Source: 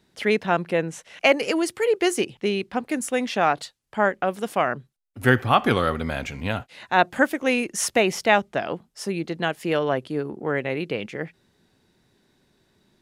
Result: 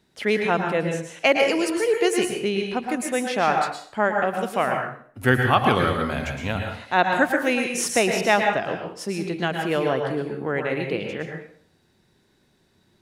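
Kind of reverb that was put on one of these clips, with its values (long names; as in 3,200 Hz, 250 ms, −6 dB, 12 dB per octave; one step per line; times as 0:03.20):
dense smooth reverb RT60 0.52 s, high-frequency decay 0.85×, pre-delay 100 ms, DRR 2.5 dB
level −1 dB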